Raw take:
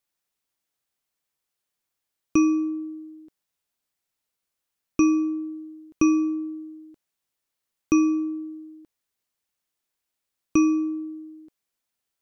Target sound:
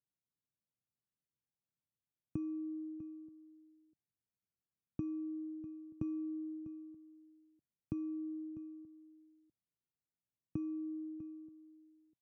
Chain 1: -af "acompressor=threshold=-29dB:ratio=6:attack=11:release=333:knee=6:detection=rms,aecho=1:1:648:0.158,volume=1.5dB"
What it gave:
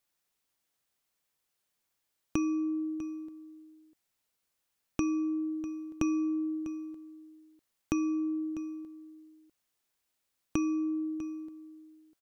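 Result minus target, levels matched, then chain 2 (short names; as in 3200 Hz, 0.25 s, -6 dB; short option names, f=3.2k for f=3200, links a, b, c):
125 Hz band -8.5 dB
-af "acompressor=threshold=-29dB:ratio=6:attack=11:release=333:knee=6:detection=rms,bandpass=f=130:t=q:w=1.5:csg=0,aecho=1:1:648:0.158,volume=1.5dB"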